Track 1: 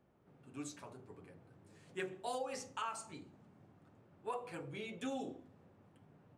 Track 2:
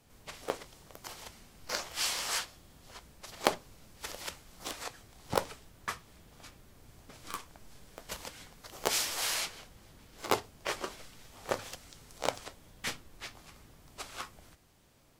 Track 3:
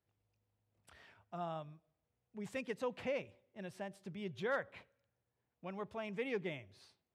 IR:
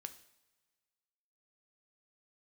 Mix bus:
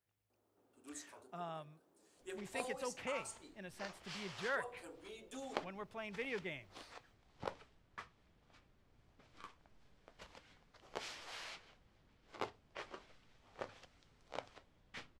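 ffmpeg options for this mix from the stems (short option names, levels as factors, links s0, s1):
-filter_complex "[0:a]highpass=f=270:w=0.5412,highpass=f=270:w=1.3066,equalizer=f=2100:t=o:w=0.93:g=-7.5,adelay=300,volume=0.501[s0];[1:a]lowpass=2900,agate=range=0.0224:threshold=0.00158:ratio=3:detection=peak,adelay=2100,volume=0.211[s1];[2:a]equalizer=f=1800:w=0.84:g=5.5,volume=0.531[s2];[s0][s1][s2]amix=inputs=3:normalize=0,highshelf=f=4800:g=8.5"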